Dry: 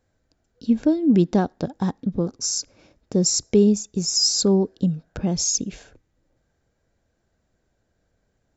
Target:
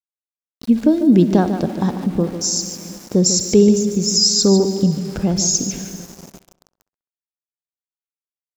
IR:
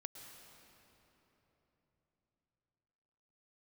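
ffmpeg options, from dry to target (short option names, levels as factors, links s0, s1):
-filter_complex "[0:a]asplit=2[s0][s1];[1:a]atrim=start_sample=2205,adelay=147[s2];[s1][s2]afir=irnorm=-1:irlink=0,volume=0.631[s3];[s0][s3]amix=inputs=2:normalize=0,aeval=exprs='val(0)*gte(abs(val(0)),0.0106)':c=same,asplit=2[s4][s5];[s5]adelay=66,lowpass=f=2900:p=1,volume=0.141,asplit=2[s6][s7];[s7]adelay=66,lowpass=f=2900:p=1,volume=0.5,asplit=2[s8][s9];[s9]adelay=66,lowpass=f=2900:p=1,volume=0.5,asplit=2[s10][s11];[s11]adelay=66,lowpass=f=2900:p=1,volume=0.5[s12];[s4][s6][s8][s10][s12]amix=inputs=5:normalize=0,volume=1.68"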